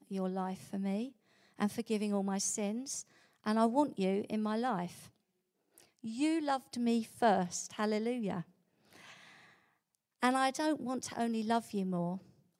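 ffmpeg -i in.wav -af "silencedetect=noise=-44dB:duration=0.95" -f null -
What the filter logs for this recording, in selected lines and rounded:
silence_start: 9.11
silence_end: 10.22 | silence_duration: 1.11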